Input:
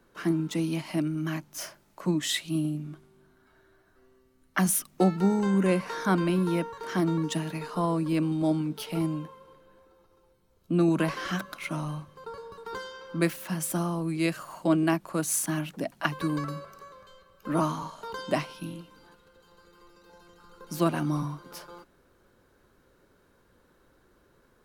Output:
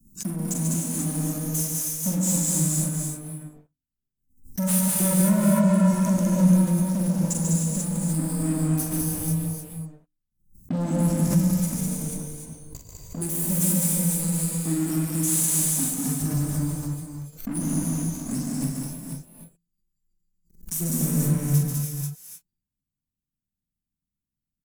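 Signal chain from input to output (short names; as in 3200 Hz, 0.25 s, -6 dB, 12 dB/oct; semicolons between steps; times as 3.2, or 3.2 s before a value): spectral noise reduction 17 dB; elliptic band-stop 220–7200 Hz, stop band 40 dB; notches 60/120/180/240/300 Hz; sample leveller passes 5; compressor 2.5:1, threshold -28 dBFS, peak gain reduction 7.5 dB; on a send: tapped delay 44/103/141/201/484 ms -5.5/-19.5/-5/-3.5/-6 dB; on the sum: non-linear reverb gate 0.33 s rising, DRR 0 dB; backwards sustainer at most 140 dB/s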